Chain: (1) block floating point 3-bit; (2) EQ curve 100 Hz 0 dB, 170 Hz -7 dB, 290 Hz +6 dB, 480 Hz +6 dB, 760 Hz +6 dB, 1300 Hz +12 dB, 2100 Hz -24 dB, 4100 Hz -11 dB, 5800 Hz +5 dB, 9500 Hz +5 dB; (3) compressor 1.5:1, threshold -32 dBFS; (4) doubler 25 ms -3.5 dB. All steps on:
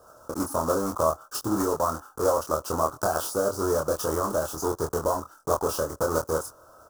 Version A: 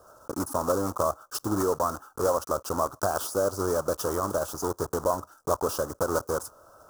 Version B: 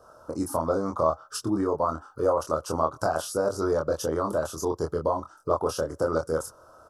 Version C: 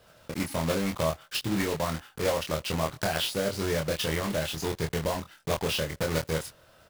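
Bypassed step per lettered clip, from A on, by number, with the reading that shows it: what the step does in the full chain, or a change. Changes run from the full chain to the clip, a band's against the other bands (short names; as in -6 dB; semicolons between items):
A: 4, loudness change -1.5 LU; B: 1, distortion -9 dB; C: 2, loudness change -2.5 LU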